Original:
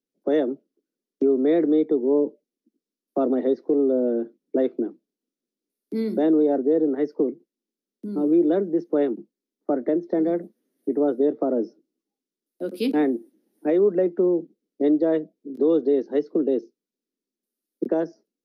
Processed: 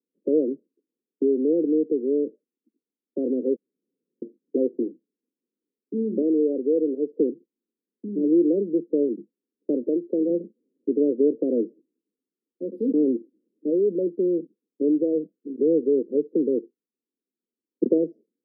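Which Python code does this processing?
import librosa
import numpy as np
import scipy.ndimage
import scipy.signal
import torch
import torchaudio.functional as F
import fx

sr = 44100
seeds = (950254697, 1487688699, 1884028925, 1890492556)

y = fx.highpass(x, sr, hz=320.0, slope=6, at=(6.22, 7.11))
y = fx.highpass(y, sr, hz=270.0, slope=6, at=(9.83, 10.3))
y = fx.leveller(y, sr, passes=1, at=(12.88, 17.98))
y = fx.edit(y, sr, fx.room_tone_fill(start_s=3.56, length_s=0.66), tone=tone)
y = scipy.signal.sosfilt(scipy.signal.ellip(4, 1.0, 40, 510.0, 'lowpass', fs=sr, output='sos'), y)
y = fx.rider(y, sr, range_db=10, speed_s=2.0)
y = scipy.signal.sosfilt(scipy.signal.butter(2, 180.0, 'highpass', fs=sr, output='sos'), y)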